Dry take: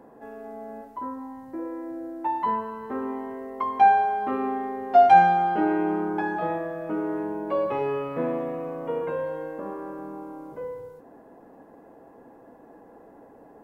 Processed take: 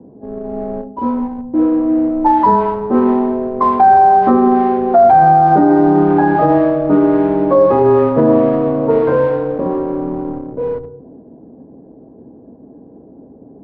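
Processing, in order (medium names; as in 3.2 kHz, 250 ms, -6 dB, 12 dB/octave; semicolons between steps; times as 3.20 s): CVSD coder 32 kbps; high-pass 88 Hz 12 dB/octave; peaking EQ 2.7 kHz -14 dB 0.78 oct; hum notches 60/120/180/240 Hz; tape echo 176 ms, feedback 53%, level -18 dB, low-pass 1.8 kHz; in parallel at -6 dB: bit crusher 6-bit; on the sum: level-controlled noise filter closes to 330 Hz, open at -16 dBFS; bass shelf 270 Hz +5.5 dB; low-pass that closes with the level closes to 1.4 kHz, closed at -18 dBFS; on a send at -14 dB: reverberation RT60 0.35 s, pre-delay 3 ms; on the sum: frequency shift -18 Hz; loudness maximiser +14 dB; trim -1.5 dB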